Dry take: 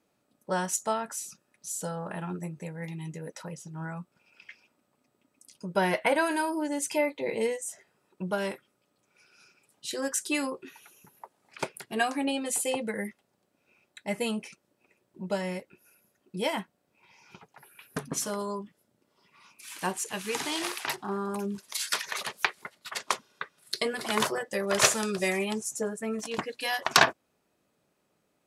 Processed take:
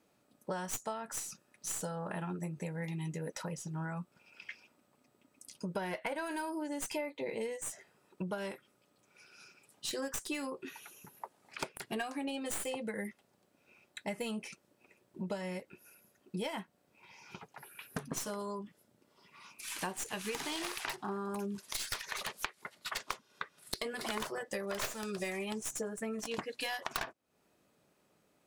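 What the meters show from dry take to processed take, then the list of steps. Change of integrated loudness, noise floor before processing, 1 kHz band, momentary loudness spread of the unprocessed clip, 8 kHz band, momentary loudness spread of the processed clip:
-9.0 dB, -75 dBFS, -10.0 dB, 15 LU, -9.0 dB, 14 LU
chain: tracing distortion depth 0.13 ms; compression 8:1, threshold -37 dBFS, peak gain reduction 22 dB; trim +2 dB

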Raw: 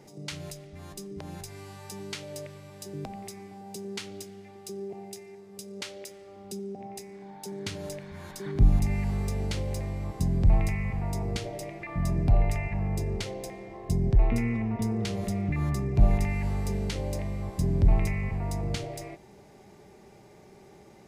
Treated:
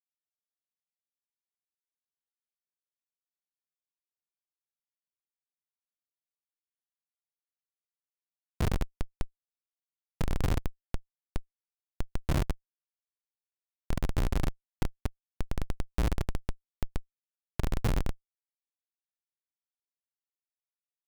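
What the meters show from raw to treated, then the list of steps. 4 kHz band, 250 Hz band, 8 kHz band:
-7.5 dB, -9.5 dB, -9.0 dB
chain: thinning echo 141 ms, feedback 42%, high-pass 230 Hz, level -4.5 dB; whisper effect; Schmitt trigger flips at -19 dBFS; trim +4 dB

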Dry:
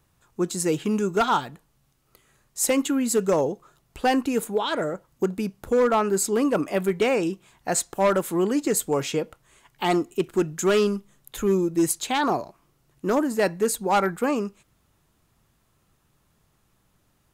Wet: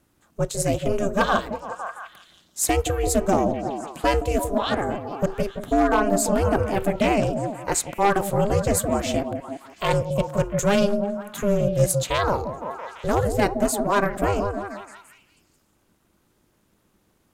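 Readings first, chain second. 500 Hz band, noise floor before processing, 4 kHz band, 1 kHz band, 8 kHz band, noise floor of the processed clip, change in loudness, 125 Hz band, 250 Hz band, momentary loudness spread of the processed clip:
+1.0 dB, -67 dBFS, +0.5 dB, +2.5 dB, +0.5 dB, -66 dBFS, +1.0 dB, +8.0 dB, -0.5 dB, 11 LU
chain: repeats whose band climbs or falls 170 ms, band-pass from 350 Hz, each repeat 0.7 oct, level -4 dB; ring modulator 200 Hz; trim +3.5 dB

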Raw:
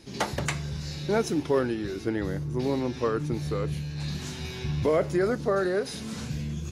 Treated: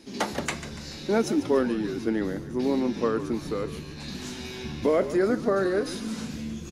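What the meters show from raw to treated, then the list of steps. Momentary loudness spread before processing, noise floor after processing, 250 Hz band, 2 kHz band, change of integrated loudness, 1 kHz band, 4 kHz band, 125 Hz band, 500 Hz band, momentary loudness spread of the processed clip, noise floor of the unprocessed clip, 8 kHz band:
9 LU, -40 dBFS, +3.0 dB, +0.5 dB, +1.0 dB, +0.5 dB, +0.5 dB, -7.0 dB, +1.5 dB, 12 LU, -38 dBFS, +0.5 dB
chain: resonant low shelf 180 Hz -6 dB, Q 3; on a send: frequency-shifting echo 144 ms, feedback 53%, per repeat -56 Hz, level -13 dB

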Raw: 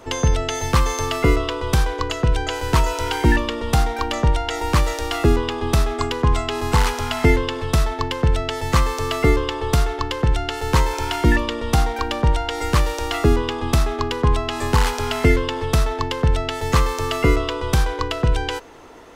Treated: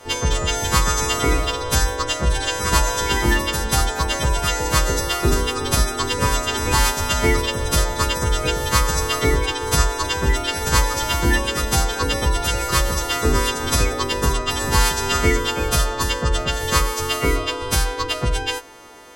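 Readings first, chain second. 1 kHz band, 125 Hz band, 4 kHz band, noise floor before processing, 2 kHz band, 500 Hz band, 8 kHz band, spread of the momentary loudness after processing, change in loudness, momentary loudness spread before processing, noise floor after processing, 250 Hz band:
+0.5 dB, -2.5 dB, +5.0 dB, -29 dBFS, +3.0 dB, -1.0 dB, +9.5 dB, 3 LU, +1.0 dB, 4 LU, -28 dBFS, -3.0 dB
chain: partials quantised in pitch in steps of 2 st; ever faster or slower copies 219 ms, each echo +2 st, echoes 3, each echo -6 dB; trim -1 dB

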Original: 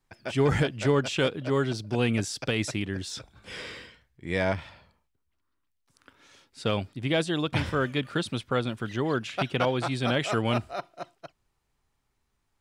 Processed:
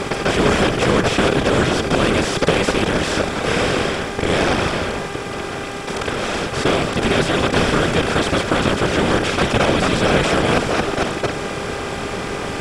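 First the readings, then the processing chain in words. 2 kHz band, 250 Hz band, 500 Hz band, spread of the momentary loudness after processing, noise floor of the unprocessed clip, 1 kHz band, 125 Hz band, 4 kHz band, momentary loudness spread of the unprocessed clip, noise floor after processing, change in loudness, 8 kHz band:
+13.0 dB, +10.5 dB, +11.0 dB, 9 LU, -76 dBFS, +14.0 dB, +8.0 dB, +12.5 dB, 14 LU, -27 dBFS, +10.0 dB, +13.5 dB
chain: spectral levelling over time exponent 0.2; whisper effect; mains buzz 400 Hz, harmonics 6, -34 dBFS -4 dB/octave; trim +1.5 dB

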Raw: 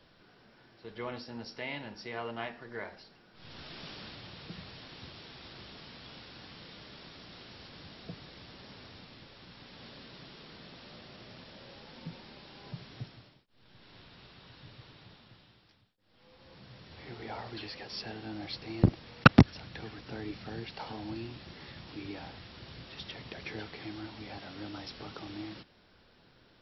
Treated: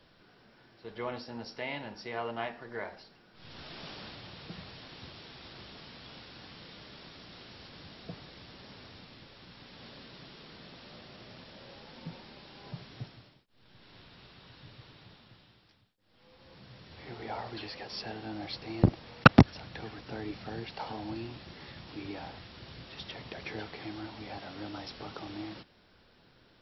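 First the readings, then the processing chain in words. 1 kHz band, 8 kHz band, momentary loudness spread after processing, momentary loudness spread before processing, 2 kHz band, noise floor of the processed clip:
+2.5 dB, no reading, 13 LU, 12 LU, +1.0 dB, -63 dBFS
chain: dynamic bell 740 Hz, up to +4 dB, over -54 dBFS, Q 1

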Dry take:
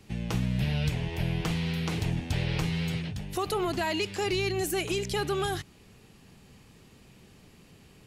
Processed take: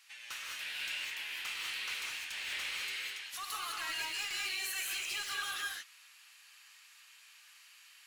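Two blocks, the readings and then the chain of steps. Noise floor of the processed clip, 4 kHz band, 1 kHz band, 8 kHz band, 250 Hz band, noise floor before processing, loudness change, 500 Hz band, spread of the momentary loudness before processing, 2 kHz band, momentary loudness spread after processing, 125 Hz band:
-60 dBFS, -1.0 dB, -10.0 dB, -0.5 dB, -34.0 dB, -56 dBFS, -7.0 dB, -28.5 dB, 4 LU, -0.5 dB, 21 LU, under -40 dB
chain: high-pass 1.3 kHz 24 dB/octave; saturation -37.5 dBFS, distortion -8 dB; gated-style reverb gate 230 ms rising, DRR -1.5 dB

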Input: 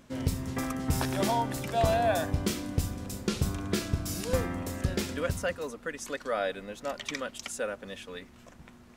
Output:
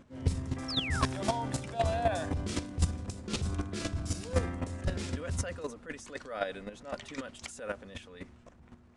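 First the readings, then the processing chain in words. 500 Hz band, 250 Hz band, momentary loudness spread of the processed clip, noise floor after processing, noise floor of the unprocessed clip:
-5.0 dB, -4.0 dB, 12 LU, -58 dBFS, -54 dBFS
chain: resampled via 22.05 kHz; transient shaper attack -6 dB, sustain +6 dB; peaking EQ 83 Hz +8 dB 0.83 oct; hum notches 50/100 Hz; painted sound fall, 0.68–1.05 s, 1–5.7 kHz -30 dBFS; square tremolo 3.9 Hz, depth 65%, duty 10%; tape noise reduction on one side only decoder only; trim +2 dB

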